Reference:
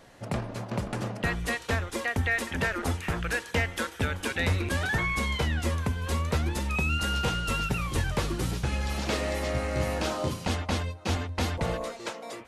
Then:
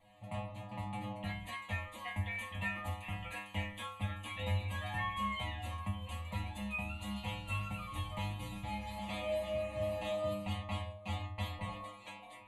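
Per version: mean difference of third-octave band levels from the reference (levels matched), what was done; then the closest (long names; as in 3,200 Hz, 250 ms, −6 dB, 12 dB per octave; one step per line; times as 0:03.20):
7.5 dB: high-shelf EQ 5,800 Hz −7.5 dB
phaser with its sweep stopped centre 1,500 Hz, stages 6
stiff-string resonator 100 Hz, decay 0.75 s, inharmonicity 0.002
level +7.5 dB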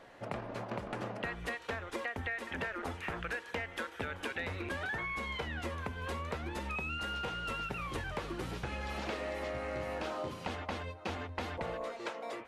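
4.0 dB: bass and treble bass −9 dB, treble −12 dB
downward compressor, threshold −35 dBFS, peak gain reduction 11 dB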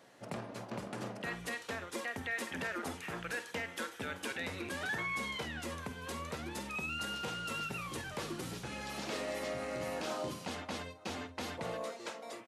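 2.5 dB: brickwall limiter −21.5 dBFS, peak gain reduction 6 dB
high-pass filter 180 Hz 12 dB per octave
double-tracking delay 50 ms −13 dB
level −6.5 dB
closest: third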